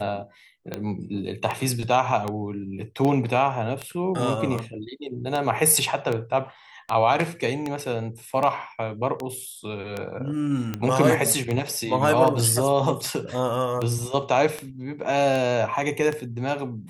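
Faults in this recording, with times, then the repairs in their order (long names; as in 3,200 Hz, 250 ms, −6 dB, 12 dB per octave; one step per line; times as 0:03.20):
scratch tick 78 rpm −14 dBFS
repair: click removal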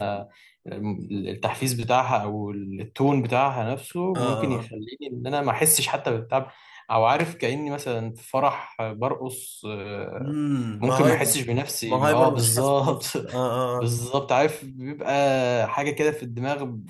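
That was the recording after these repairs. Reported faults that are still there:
none of them is left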